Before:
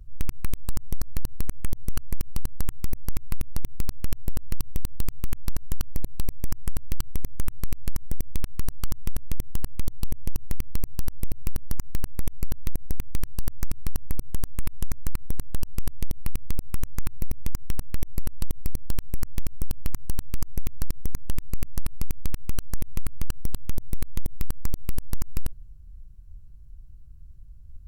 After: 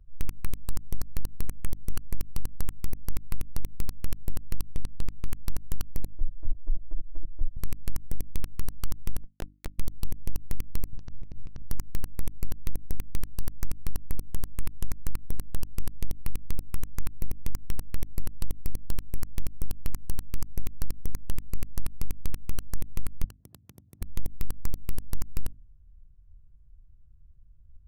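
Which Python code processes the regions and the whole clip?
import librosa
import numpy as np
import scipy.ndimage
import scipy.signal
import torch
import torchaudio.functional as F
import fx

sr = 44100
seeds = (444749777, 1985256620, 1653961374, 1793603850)

y = fx.chain(x, sr, fx.air_absorb(metres=52.0),
    fx.notch(hz=5400.0, q=24.0), at=(4.75, 5.29))
y = fx.chain(y, sr, fx.steep_lowpass(hz=770.0, slope=48),
    fx.clip_hard(threshold_db=-14.5),
    fx.lpc_vocoder(seeds[0], excitation='pitch_kept', order=10), at=(6.05, 7.57))
y = fx.chain(y, sr, fx.over_compress(threshold_db=-21.0, ratio=-1.0),
    fx.schmitt(flips_db=-37.5), at=(9.24, 9.79))
y = fx.chain(y, sr, fx.over_compress(threshold_db=-22.0, ratio=-1.0),
    fx.brickwall_lowpass(high_hz=6800.0),
    fx.peak_eq(hz=130.0, db=5.0, octaves=1.6), at=(10.93, 11.62))
y = fx.chain(y, sr, fx.highpass(hz=93.0, slope=24),
    fx.over_compress(threshold_db=-37.0, ratio=-0.5), at=(23.24, 24.02))
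y = fx.wiener(y, sr, points=9)
y = fx.hum_notches(y, sr, base_hz=50, count=6)
y = fx.upward_expand(y, sr, threshold_db=-26.0, expansion=1.5)
y = y * librosa.db_to_amplitude(-1.5)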